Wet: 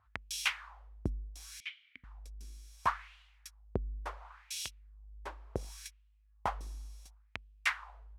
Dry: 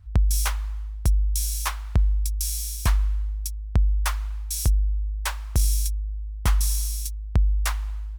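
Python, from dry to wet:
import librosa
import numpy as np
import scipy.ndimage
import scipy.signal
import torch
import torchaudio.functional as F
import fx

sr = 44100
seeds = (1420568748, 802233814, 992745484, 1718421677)

y = fx.vowel_filter(x, sr, vowel='i', at=(1.6, 2.04))
y = fx.wah_lfo(y, sr, hz=0.7, low_hz=300.0, high_hz=3000.0, q=2.8)
y = F.gain(torch.from_numpy(y), 5.5).numpy()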